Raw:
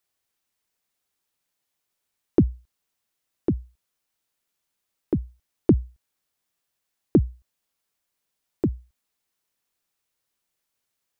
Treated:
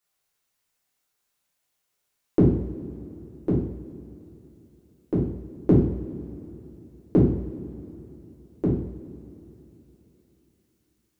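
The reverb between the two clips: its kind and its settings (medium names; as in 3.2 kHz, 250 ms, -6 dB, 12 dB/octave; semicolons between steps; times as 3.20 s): two-slope reverb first 0.6 s, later 3.5 s, from -18 dB, DRR -7 dB; trim -4.5 dB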